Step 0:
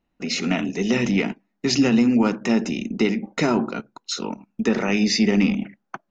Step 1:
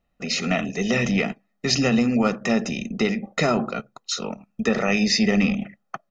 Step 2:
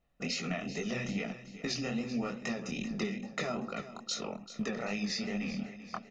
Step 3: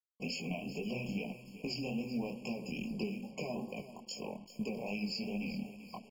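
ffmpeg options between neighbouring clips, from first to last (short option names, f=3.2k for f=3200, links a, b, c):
-af "aecho=1:1:1.6:0.6"
-af "acompressor=threshold=-30dB:ratio=6,flanger=delay=18:depth=7.8:speed=2.4,aecho=1:1:388|776|1164|1552|1940:0.2|0.102|0.0519|0.0265|0.0135"
-af "bandreject=f=660:w=22,acrusher=bits=8:mix=0:aa=0.5,afftfilt=real='re*eq(mod(floor(b*sr/1024/1100),2),0)':imag='im*eq(mod(floor(b*sr/1024/1100),2),0)':win_size=1024:overlap=0.75,volume=-2.5dB"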